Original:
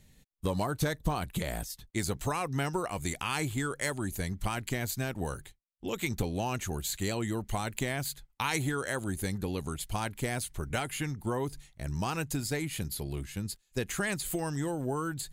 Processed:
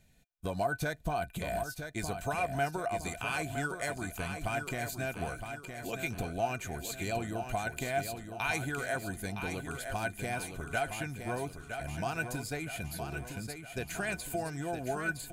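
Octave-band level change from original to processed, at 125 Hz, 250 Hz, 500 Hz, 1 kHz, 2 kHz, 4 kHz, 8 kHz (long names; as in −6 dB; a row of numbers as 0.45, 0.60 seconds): −5.0, −5.0, 0.0, +0.5, +1.5, −5.0, −5.0 decibels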